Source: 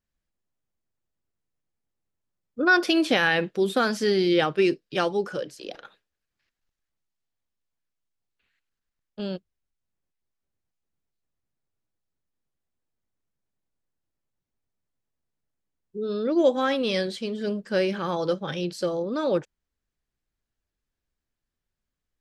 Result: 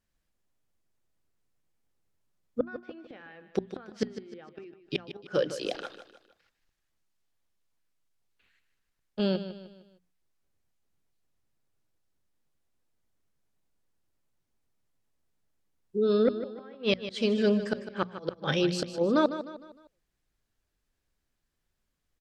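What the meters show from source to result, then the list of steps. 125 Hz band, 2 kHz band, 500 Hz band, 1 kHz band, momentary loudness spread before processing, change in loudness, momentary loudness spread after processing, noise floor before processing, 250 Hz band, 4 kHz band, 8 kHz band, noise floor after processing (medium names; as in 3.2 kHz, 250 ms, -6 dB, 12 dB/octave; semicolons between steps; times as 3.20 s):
-2.0 dB, -13.0 dB, -4.5 dB, -9.0 dB, 13 LU, -5.5 dB, 21 LU, under -85 dBFS, -4.0 dB, -6.0 dB, no reading, -80 dBFS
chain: low-pass that closes with the level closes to 2.1 kHz, closed at -19.5 dBFS; inverted gate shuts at -18 dBFS, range -31 dB; hum notches 60/120/180/240 Hz; feedback delay 153 ms, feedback 42%, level -12 dB; trim +4.5 dB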